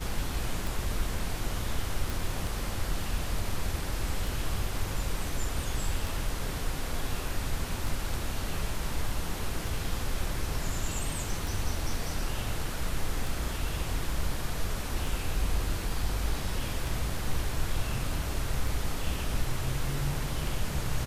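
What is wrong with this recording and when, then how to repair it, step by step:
tick 33 1/3 rpm
2.1 pop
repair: de-click

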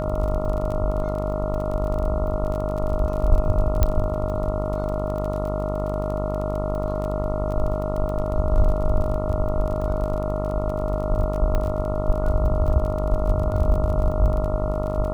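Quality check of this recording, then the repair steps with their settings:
buzz 50 Hz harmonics 28 -27 dBFS
crackle 27/s -29 dBFS
tone 620 Hz -27 dBFS
3.83 pop -6 dBFS
11.55 pop -13 dBFS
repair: de-click; notch 620 Hz, Q 30; de-hum 50 Hz, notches 28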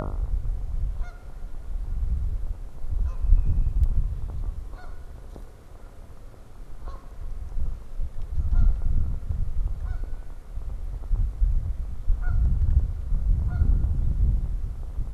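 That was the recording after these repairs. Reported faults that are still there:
3.83 pop

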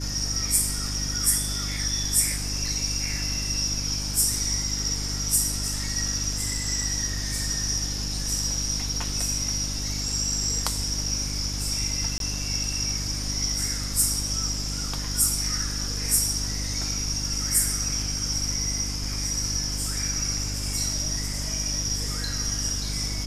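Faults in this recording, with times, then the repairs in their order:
hum 50 Hz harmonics 6 -32 dBFS
12.18–12.2 gap 22 ms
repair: de-hum 50 Hz, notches 6; interpolate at 12.18, 22 ms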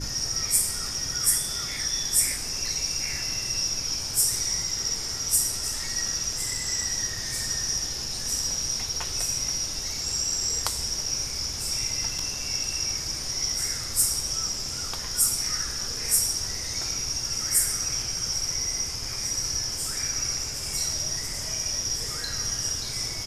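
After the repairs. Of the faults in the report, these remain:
none

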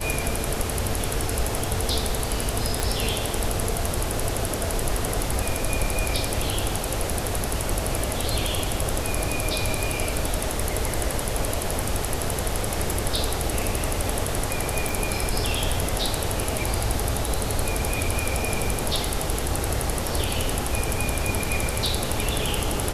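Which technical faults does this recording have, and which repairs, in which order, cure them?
2.8 pop
14.89 pop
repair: de-click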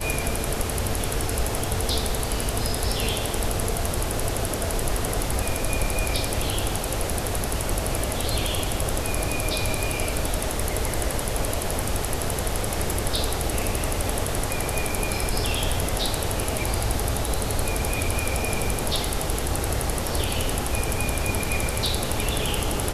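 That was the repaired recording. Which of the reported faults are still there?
2.8 pop

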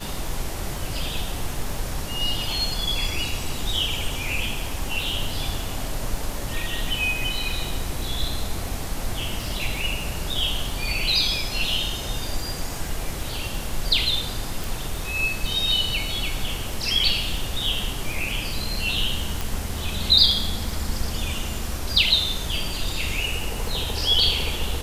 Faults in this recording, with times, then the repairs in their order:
crackle 55/s -32 dBFS
14.64 pop
19.41 pop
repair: de-click

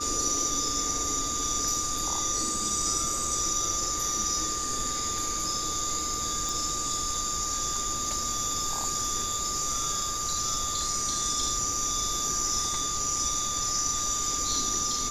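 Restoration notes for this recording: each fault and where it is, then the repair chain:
tone 1200 Hz -34 dBFS
6.49 pop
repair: de-click; notch 1200 Hz, Q 30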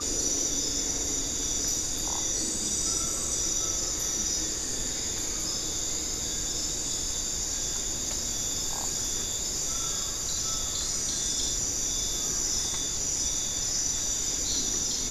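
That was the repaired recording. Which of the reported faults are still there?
none

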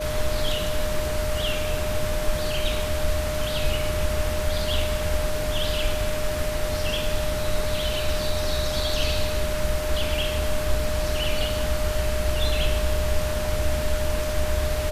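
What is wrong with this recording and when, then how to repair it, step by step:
tone 610 Hz -28 dBFS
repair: notch 610 Hz, Q 30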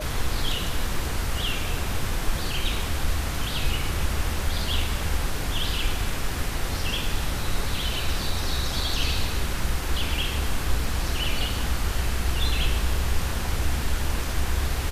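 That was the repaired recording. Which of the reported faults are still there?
none

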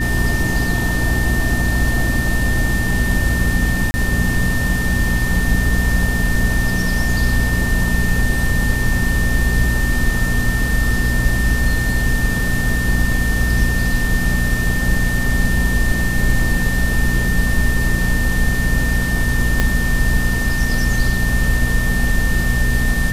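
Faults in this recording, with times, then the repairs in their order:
hum 60 Hz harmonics 4 -21 dBFS
tone 1800 Hz -22 dBFS
3.91–3.94 gap 30 ms
19.6 pop -2 dBFS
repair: de-click; notch 1800 Hz, Q 30; de-hum 60 Hz, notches 4; interpolate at 3.91, 30 ms

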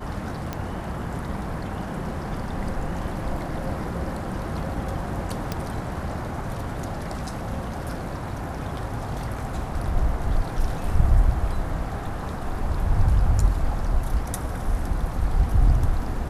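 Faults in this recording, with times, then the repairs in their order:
0.53 pop -15 dBFS
5.52 pop -13 dBFS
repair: de-click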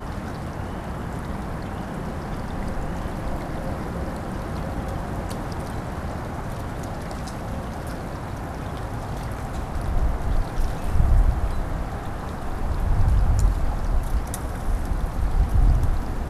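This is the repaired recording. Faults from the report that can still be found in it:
none

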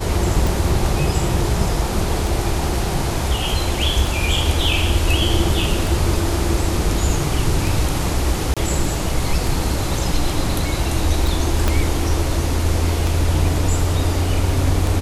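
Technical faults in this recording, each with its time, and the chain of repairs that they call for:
tick 33 1/3 rpm
8.54–8.57 gap 26 ms
11.68 pop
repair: de-click; interpolate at 8.54, 26 ms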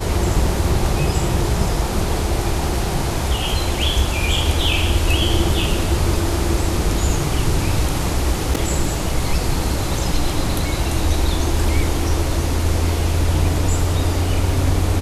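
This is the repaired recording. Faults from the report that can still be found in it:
11.68 pop

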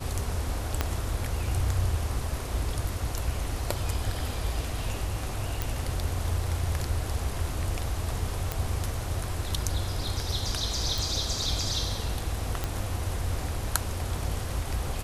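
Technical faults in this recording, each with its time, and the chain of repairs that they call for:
0.81 pop -10 dBFS
5.62 pop
8.52 pop
10.98 pop
12.64 pop -14 dBFS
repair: de-click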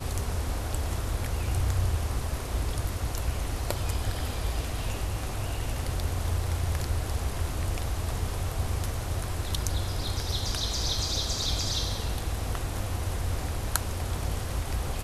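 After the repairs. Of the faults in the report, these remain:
0.81 pop

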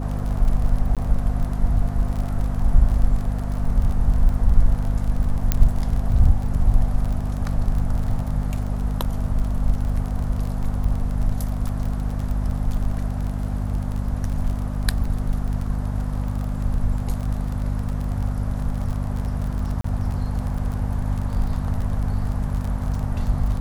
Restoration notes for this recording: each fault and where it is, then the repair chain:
crackle 29/s -27 dBFS
hum 50 Hz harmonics 5 -25 dBFS
0.95–0.97 gap 17 ms
5.52 pop -4 dBFS
19.81–19.84 gap 34 ms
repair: de-click; de-hum 50 Hz, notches 5; interpolate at 0.95, 17 ms; interpolate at 19.81, 34 ms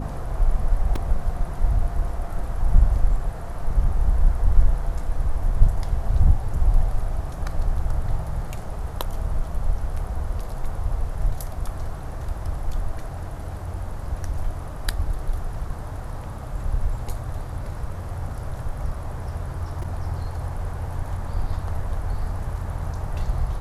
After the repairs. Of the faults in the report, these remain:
none

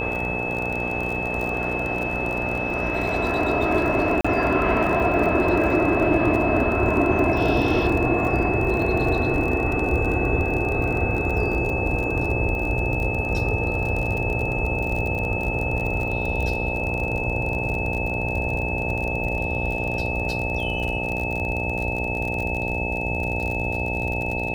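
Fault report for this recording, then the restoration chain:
buzz 60 Hz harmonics 15 -29 dBFS
crackle 39/s -27 dBFS
tone 2600 Hz -27 dBFS
4.21–4.25 gap 35 ms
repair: de-click; de-hum 60 Hz, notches 15; notch 2600 Hz, Q 30; interpolate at 4.21, 35 ms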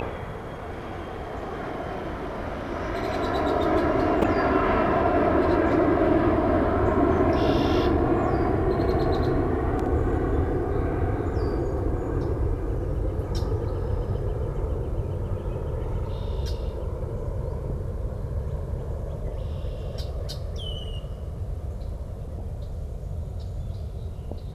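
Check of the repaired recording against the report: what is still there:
none

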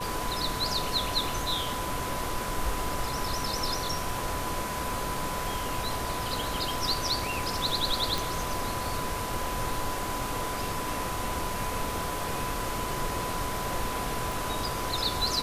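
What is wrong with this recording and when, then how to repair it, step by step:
tone 1000 Hz -35 dBFS
8.18 pop
14.32 pop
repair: de-click; notch 1000 Hz, Q 30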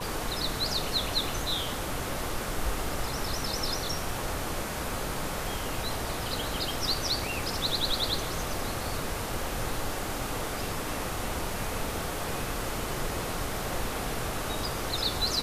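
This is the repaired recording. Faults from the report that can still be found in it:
14.32 pop

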